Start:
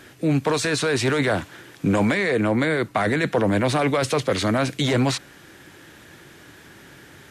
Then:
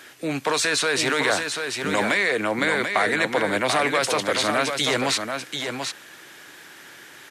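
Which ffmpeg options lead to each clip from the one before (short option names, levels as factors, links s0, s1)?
-af "highpass=f=950:p=1,aecho=1:1:738:0.501,volume=1.58"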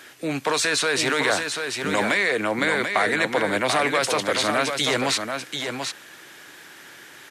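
-af anull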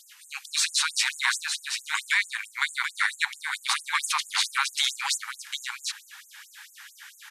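-af "afftfilt=real='re*gte(b*sr/1024,760*pow(6600/760,0.5+0.5*sin(2*PI*4.5*pts/sr)))':imag='im*gte(b*sr/1024,760*pow(6600/760,0.5+0.5*sin(2*PI*4.5*pts/sr)))':win_size=1024:overlap=0.75"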